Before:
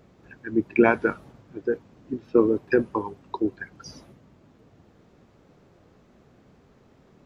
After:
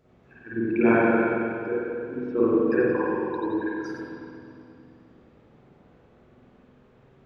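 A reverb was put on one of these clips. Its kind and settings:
spring reverb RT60 2.5 s, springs 44/52 ms, chirp 55 ms, DRR −10 dB
level −9.5 dB

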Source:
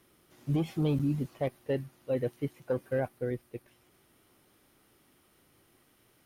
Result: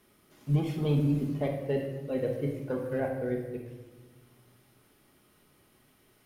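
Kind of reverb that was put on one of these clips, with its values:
rectangular room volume 820 cubic metres, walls mixed, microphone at 1.4 metres
level −1 dB

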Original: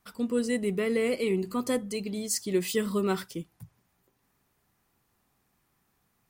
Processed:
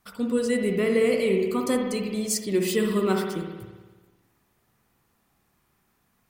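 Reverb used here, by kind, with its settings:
spring reverb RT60 1.3 s, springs 56 ms, chirp 45 ms, DRR 3 dB
level +2.5 dB

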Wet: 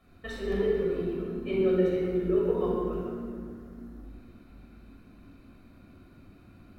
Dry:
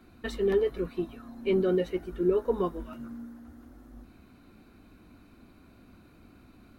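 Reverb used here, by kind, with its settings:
rectangular room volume 3,700 cubic metres, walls mixed, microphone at 6.2 metres
level −8.5 dB

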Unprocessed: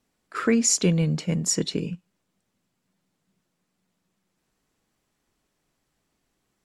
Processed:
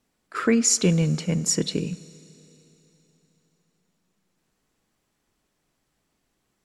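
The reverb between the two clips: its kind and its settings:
four-comb reverb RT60 3.5 s, combs from 32 ms, DRR 18.5 dB
level +1 dB

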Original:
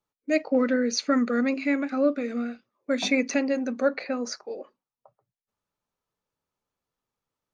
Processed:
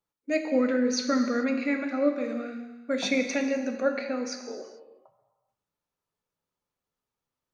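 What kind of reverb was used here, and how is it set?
reverb whose tail is shaped and stops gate 470 ms falling, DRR 5 dB
level −3 dB

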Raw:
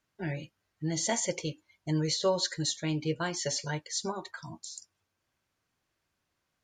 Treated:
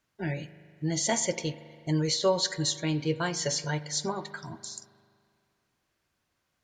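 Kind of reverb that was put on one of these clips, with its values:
spring reverb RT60 2.2 s, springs 40 ms, chirp 30 ms, DRR 14.5 dB
level +2.5 dB

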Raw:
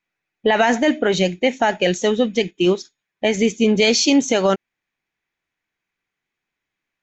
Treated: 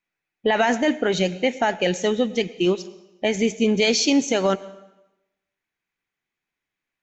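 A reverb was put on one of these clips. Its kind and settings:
dense smooth reverb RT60 0.95 s, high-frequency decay 0.9×, pre-delay 85 ms, DRR 17.5 dB
level −3.5 dB

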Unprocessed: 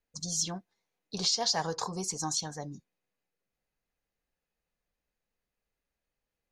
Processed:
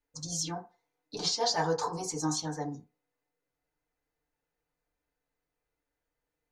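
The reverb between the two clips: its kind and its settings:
feedback delay network reverb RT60 0.31 s, low-frequency decay 0.7×, high-frequency decay 0.3×, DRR −5 dB
level −4 dB

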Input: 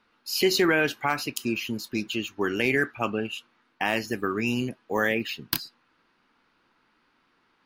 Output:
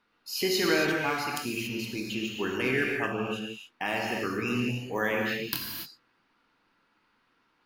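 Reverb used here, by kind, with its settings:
reverb whose tail is shaped and stops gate 310 ms flat, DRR −1 dB
level −6 dB

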